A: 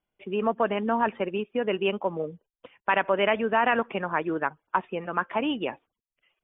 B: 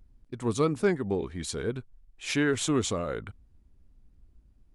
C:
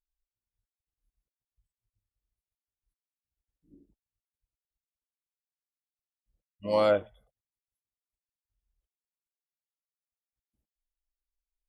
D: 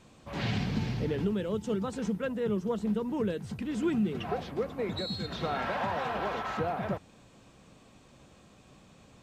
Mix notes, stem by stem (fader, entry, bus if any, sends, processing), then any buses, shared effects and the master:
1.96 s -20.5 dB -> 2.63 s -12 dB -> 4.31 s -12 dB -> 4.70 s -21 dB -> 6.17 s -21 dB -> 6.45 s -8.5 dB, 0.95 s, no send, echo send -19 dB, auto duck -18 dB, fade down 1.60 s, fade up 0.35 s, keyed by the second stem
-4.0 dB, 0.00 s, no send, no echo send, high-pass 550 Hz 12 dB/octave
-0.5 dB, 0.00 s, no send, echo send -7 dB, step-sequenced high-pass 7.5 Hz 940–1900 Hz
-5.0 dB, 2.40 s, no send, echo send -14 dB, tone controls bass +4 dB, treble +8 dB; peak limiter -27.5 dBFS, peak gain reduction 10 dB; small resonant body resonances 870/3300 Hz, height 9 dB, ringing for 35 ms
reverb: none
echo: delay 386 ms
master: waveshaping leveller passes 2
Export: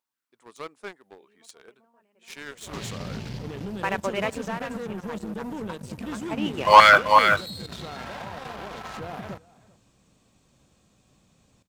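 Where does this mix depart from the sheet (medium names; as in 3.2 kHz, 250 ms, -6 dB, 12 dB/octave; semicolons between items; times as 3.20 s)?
stem B -4.0 dB -> -12.5 dB; stem C -0.5 dB -> +9.5 dB; stem D: missing small resonant body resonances 870/3300 Hz, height 9 dB, ringing for 35 ms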